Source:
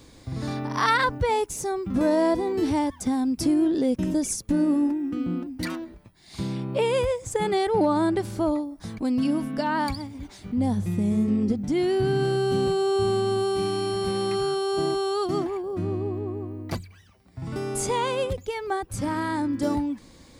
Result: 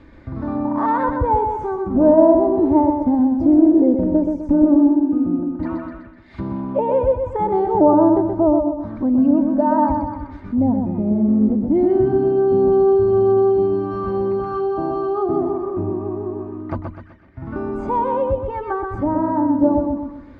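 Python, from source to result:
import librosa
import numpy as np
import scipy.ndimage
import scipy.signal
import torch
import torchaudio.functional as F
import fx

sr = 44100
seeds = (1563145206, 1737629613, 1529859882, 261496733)

y = fx.low_shelf(x, sr, hz=410.0, db=5.0)
y = y + 0.49 * np.pad(y, (int(3.3 * sr / 1000.0), 0))[:len(y)]
y = fx.quant_float(y, sr, bits=4)
y = fx.echo_feedback(y, sr, ms=126, feedback_pct=41, wet_db=-5.0)
y = fx.envelope_lowpass(y, sr, base_hz=780.0, top_hz=1900.0, q=2.1, full_db=-18.0, direction='down')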